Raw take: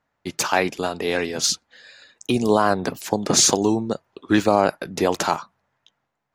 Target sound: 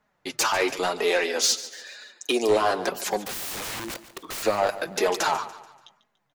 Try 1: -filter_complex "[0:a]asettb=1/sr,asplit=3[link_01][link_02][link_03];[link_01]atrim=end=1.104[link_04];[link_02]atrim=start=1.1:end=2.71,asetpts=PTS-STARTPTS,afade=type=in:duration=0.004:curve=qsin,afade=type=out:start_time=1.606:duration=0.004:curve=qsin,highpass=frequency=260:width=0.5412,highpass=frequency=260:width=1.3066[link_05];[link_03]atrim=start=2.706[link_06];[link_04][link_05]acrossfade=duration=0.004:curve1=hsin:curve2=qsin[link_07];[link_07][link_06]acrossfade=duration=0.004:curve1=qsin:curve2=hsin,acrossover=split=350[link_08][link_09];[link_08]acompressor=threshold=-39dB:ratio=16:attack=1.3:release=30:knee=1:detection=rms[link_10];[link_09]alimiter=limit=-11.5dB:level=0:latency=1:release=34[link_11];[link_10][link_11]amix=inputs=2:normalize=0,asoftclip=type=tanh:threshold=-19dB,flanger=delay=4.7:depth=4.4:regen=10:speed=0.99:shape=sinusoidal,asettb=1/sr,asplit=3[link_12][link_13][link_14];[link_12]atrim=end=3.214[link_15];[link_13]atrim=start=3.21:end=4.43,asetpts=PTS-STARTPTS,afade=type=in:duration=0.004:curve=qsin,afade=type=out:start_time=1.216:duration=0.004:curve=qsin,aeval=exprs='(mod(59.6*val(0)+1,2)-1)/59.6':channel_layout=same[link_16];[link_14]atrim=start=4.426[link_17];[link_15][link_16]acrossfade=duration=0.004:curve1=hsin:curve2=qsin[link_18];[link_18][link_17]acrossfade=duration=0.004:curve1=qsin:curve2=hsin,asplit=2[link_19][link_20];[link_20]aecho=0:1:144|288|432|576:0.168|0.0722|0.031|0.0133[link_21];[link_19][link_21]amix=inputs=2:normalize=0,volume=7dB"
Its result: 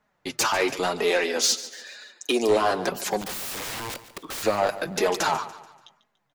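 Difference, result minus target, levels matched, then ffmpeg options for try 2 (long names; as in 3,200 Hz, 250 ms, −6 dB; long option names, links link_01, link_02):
downward compressor: peak gain reduction −9.5 dB
-filter_complex "[0:a]asettb=1/sr,asplit=3[link_01][link_02][link_03];[link_01]atrim=end=1.104[link_04];[link_02]atrim=start=1.1:end=2.71,asetpts=PTS-STARTPTS,afade=type=in:duration=0.004:curve=qsin,afade=type=out:start_time=1.606:duration=0.004:curve=qsin,highpass=frequency=260:width=0.5412,highpass=frequency=260:width=1.3066[link_05];[link_03]atrim=start=2.706[link_06];[link_04][link_05]acrossfade=duration=0.004:curve1=hsin:curve2=qsin[link_07];[link_07][link_06]acrossfade=duration=0.004:curve1=qsin:curve2=hsin,acrossover=split=350[link_08][link_09];[link_08]acompressor=threshold=-49dB:ratio=16:attack=1.3:release=30:knee=1:detection=rms[link_10];[link_09]alimiter=limit=-11.5dB:level=0:latency=1:release=34[link_11];[link_10][link_11]amix=inputs=2:normalize=0,asoftclip=type=tanh:threshold=-19dB,flanger=delay=4.7:depth=4.4:regen=10:speed=0.99:shape=sinusoidal,asettb=1/sr,asplit=3[link_12][link_13][link_14];[link_12]atrim=end=3.214[link_15];[link_13]atrim=start=3.21:end=4.43,asetpts=PTS-STARTPTS,afade=type=in:duration=0.004:curve=qsin,afade=type=out:start_time=1.216:duration=0.004:curve=qsin,aeval=exprs='(mod(59.6*val(0)+1,2)-1)/59.6':channel_layout=same[link_16];[link_14]atrim=start=4.426[link_17];[link_15][link_16]acrossfade=duration=0.004:curve1=hsin:curve2=qsin[link_18];[link_18][link_17]acrossfade=duration=0.004:curve1=qsin:curve2=hsin,asplit=2[link_19][link_20];[link_20]aecho=0:1:144|288|432|576:0.168|0.0722|0.031|0.0133[link_21];[link_19][link_21]amix=inputs=2:normalize=0,volume=7dB"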